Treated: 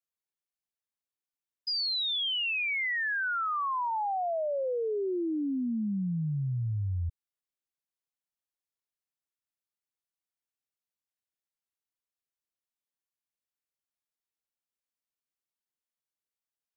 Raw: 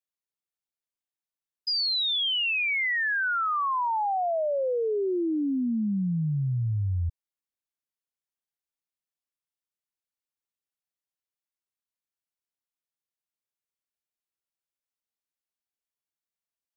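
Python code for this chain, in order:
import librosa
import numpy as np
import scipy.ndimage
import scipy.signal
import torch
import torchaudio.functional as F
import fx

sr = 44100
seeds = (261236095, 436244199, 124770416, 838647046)

y = fx.lowpass(x, sr, hz=2400.0, slope=24, at=(3.9, 4.63), fade=0.02)
y = y * librosa.db_to_amplitude(-4.0)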